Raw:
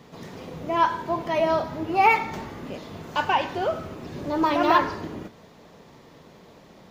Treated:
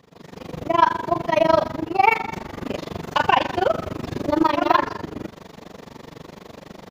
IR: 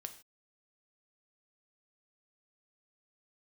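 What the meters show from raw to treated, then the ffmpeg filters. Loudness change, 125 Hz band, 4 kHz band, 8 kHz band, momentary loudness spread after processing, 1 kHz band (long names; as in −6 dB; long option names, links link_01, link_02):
+2.5 dB, +4.5 dB, +4.0 dB, can't be measured, 23 LU, +3.0 dB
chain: -af "aecho=1:1:201:0.0841,tremolo=f=24:d=0.974,dynaudnorm=framelen=270:gausssize=3:maxgain=14dB,volume=-1dB"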